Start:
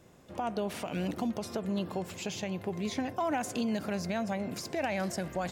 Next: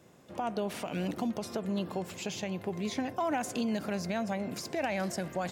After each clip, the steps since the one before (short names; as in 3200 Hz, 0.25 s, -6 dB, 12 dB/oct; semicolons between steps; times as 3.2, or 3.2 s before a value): HPF 100 Hz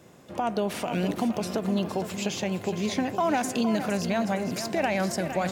lo-fi delay 0.462 s, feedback 35%, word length 10-bit, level -9.5 dB; gain +6 dB